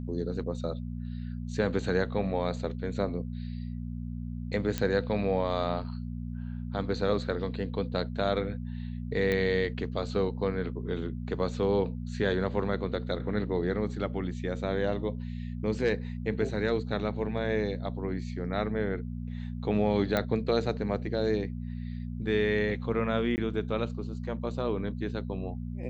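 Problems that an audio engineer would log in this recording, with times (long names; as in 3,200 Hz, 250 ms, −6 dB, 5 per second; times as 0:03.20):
mains hum 60 Hz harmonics 4 −36 dBFS
0:04.78: click −15 dBFS
0:09.32: click −17 dBFS
0:20.17: click −14 dBFS
0:23.36–0:23.38: drop-out 19 ms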